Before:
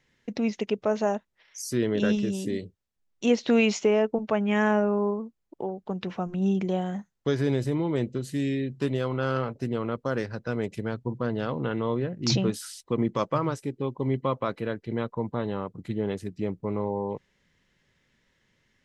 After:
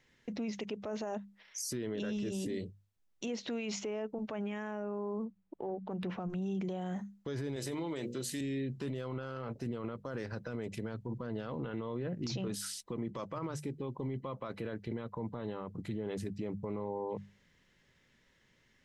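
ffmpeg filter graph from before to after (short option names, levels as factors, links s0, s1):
-filter_complex "[0:a]asettb=1/sr,asplit=3[s0][s1][s2];[s0]atrim=end=5.254[s3];[s1]atrim=start=5.25:end=6.3,asetpts=PTS-STARTPTS,afade=t=in:d=0.004:c=qsin,afade=t=out:st=1.046:d=0.004:c=qsin,adynamicsmooth=sensitivity=4:basefreq=3600,bandreject=f=93.86:t=h:w=4,bandreject=f=187.72:t=h:w=4[s4];[s2]atrim=start=6.296[s5];[s3][s4]acrossfade=d=0.004:c1=hsin:c2=qsin[s6];[s6][s5]acrossfade=d=0.004:c1=qsin:c2=hsin,asettb=1/sr,asplit=3[s7][s8][s9];[s7]atrim=end=7.564[s10];[s8]atrim=start=7.56:end=8.41,asetpts=PTS-STARTPTS,afade=t=in:d=0.004:c=qsin,afade=t=out:st=0.846:d=0.004:c=qsin,highpass=f=280:p=1,highshelf=f=2700:g=9,bandreject=f=60:t=h:w=6,bandreject=f=120:t=h:w=6,bandreject=f=180:t=h:w=6,bandreject=f=240:t=h:w=6,bandreject=f=300:t=h:w=6,bandreject=f=360:t=h:w=6,bandreject=f=420:t=h:w=6,bandreject=f=480:t=h:w=6,bandreject=f=540:t=h:w=6[s11];[s9]atrim=start=8.406[s12];[s10][s11]acrossfade=d=0.004:c1=hsin:c2=qsin[s13];[s13][s12]acrossfade=d=0.004:c1=qsin:c2=hsin,bandreject=f=50:t=h:w=6,bandreject=f=100:t=h:w=6,bandreject=f=150:t=h:w=6,bandreject=f=200:t=h:w=6,acompressor=threshold=0.0398:ratio=3,alimiter=level_in=1.88:limit=0.0631:level=0:latency=1:release=20,volume=0.531"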